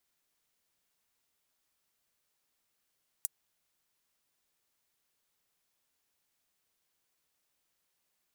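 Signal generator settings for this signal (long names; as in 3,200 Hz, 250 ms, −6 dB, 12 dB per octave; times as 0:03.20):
closed synth hi-hat, high-pass 8,100 Hz, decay 0.03 s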